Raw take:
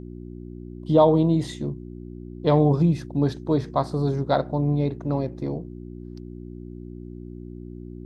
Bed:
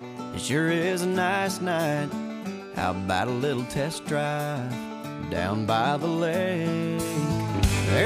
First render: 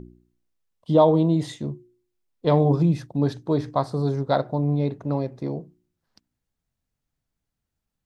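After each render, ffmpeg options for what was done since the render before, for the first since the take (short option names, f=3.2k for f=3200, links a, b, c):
-af "bandreject=f=60:t=h:w=4,bandreject=f=120:t=h:w=4,bandreject=f=180:t=h:w=4,bandreject=f=240:t=h:w=4,bandreject=f=300:t=h:w=4,bandreject=f=360:t=h:w=4"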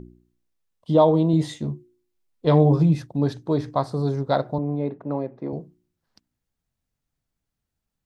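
-filter_complex "[0:a]asettb=1/sr,asplit=3[a][b][c];[a]atrim=end=1.324[d];[b]atrim=start=1.32:end=3.02,asetpts=PTS-STARTPTS,afade=t=in:d=0.004:c=qsin,afade=t=out:st=1.696:d=0.004:c=qsin,asplit=2[e][f];[f]adelay=13,volume=-6dB[g];[e][g]amix=inputs=2:normalize=0,atrim=end_sample=74970[h];[c]atrim=start=3.016[i];[d][h]acrossfade=d=0.004:c1=hsin:c2=qsin[j];[j][i]acrossfade=d=0.004:c1=qsin:c2=hsin,asettb=1/sr,asplit=3[k][l][m];[k]atrim=end=4.584[n];[l]atrim=start=4.58:end=5.53,asetpts=PTS-STARTPTS,afade=t=in:d=0.004:c=qsin,afade=t=out:st=0.946:d=0.004:c=qsin,highpass=190,lowpass=2k[o];[m]atrim=start=5.526[p];[n][o]acrossfade=d=0.004:c1=hsin:c2=qsin[q];[q][p]acrossfade=d=0.004:c1=qsin:c2=hsin"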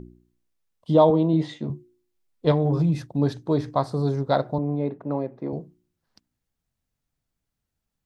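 -filter_complex "[0:a]asettb=1/sr,asplit=3[a][b][c];[a]atrim=end=1.104[d];[b]atrim=start=1.1:end=1.7,asetpts=PTS-STARTPTS,afade=t=in:d=0.004:c=qsin,afade=t=out:st=0.596:d=0.004:c=qsin,highpass=160,lowpass=3.7k[e];[c]atrim=start=1.696[f];[d][e]acrossfade=d=0.004:c1=hsin:c2=qsin[g];[g][f]acrossfade=d=0.004:c1=qsin:c2=hsin,asettb=1/sr,asplit=3[h][i][j];[h]atrim=end=2.514[k];[i]atrim=start=2.51:end=3.11,asetpts=PTS-STARTPTS,afade=t=in:d=0.004:c=qsin,afade=t=out:st=0.596:d=0.004:c=qsin,acompressor=threshold=-17dB:ratio=5:attack=3.2:release=140:knee=1:detection=peak[l];[j]atrim=start=3.106[m];[k][l]acrossfade=d=0.004:c1=hsin:c2=qsin[n];[n][m]acrossfade=d=0.004:c1=qsin:c2=hsin"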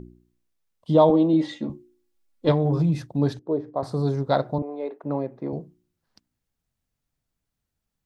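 -filter_complex "[0:a]asettb=1/sr,asplit=3[a][b][c];[a]atrim=end=1.094[d];[b]atrim=start=1.09:end=2.49,asetpts=PTS-STARTPTS,afade=t=in:d=0.004:c=qsin,afade=t=out:st=1.396:d=0.004:c=qsin,aecho=1:1:3.6:0.65,atrim=end_sample=61740[e];[c]atrim=start=2.486[f];[d][e]acrossfade=d=0.004:c1=hsin:c2=qsin[g];[g][f]acrossfade=d=0.004:c1=qsin:c2=hsin,asettb=1/sr,asplit=3[h][i][j];[h]atrim=end=3.394[k];[i]atrim=start=3.39:end=3.83,asetpts=PTS-STARTPTS,afade=t=in:d=0.004:c=qsin,afade=t=out:st=0.436:d=0.004:c=qsin,bandpass=f=450:t=q:w=1.4[l];[j]atrim=start=3.826[m];[k][l]acrossfade=d=0.004:c1=hsin:c2=qsin[n];[n][m]acrossfade=d=0.004:c1=qsin:c2=hsin,asettb=1/sr,asplit=3[o][p][q];[o]atrim=end=4.624[r];[p]atrim=start=4.62:end=5.04,asetpts=PTS-STARTPTS,afade=t=in:d=0.004:c=qsin,afade=t=out:st=0.416:d=0.004:c=qsin,highpass=f=370:w=0.5412,highpass=f=370:w=1.3066[s];[q]atrim=start=5.036[t];[r][s]acrossfade=d=0.004:c1=hsin:c2=qsin[u];[u][t]acrossfade=d=0.004:c1=qsin:c2=hsin"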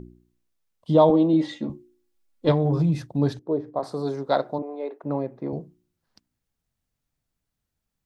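-filter_complex "[0:a]asettb=1/sr,asplit=3[a][b][c];[a]atrim=end=3.794[d];[b]atrim=start=3.79:end=5.02,asetpts=PTS-STARTPTS,afade=t=in:d=0.004:c=qsin,afade=t=out:st=1.226:d=0.004:c=qsin,highpass=260[e];[c]atrim=start=5.016[f];[d][e]acrossfade=d=0.004:c1=hsin:c2=qsin[g];[g][f]acrossfade=d=0.004:c1=qsin:c2=hsin"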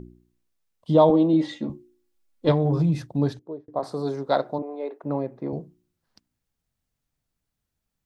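-filter_complex "[0:a]asplit=2[a][b];[a]atrim=end=3.68,asetpts=PTS-STARTPTS,afade=t=out:st=3.19:d=0.49[c];[b]atrim=start=3.68,asetpts=PTS-STARTPTS,afade=t=in:d=0.004:c=hsin[d];[c][d]concat=n=2:v=0:a=1"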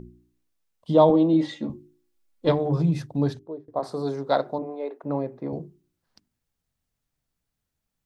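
-af "bandreject=f=50:t=h:w=6,bandreject=f=100:t=h:w=6,bandreject=f=150:t=h:w=6,bandreject=f=200:t=h:w=6,bandreject=f=250:t=h:w=6,bandreject=f=300:t=h:w=6,bandreject=f=350:t=h:w=6,bandreject=f=400:t=h:w=6"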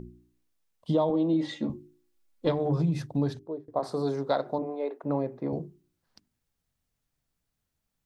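-af "acompressor=threshold=-22dB:ratio=6"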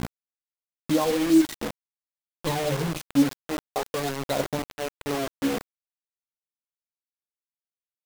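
-af "aphaser=in_gain=1:out_gain=1:delay=4.1:decay=0.73:speed=0.45:type=triangular,acrusher=bits=4:mix=0:aa=0.000001"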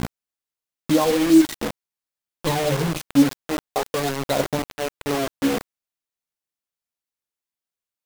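-af "volume=4.5dB"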